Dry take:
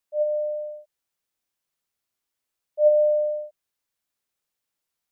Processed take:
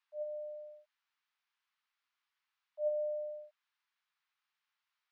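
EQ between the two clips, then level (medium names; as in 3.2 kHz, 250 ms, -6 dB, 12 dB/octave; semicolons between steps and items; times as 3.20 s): inverse Chebyshev high-pass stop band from 480 Hz, stop band 40 dB; distance through air 250 m; +6.0 dB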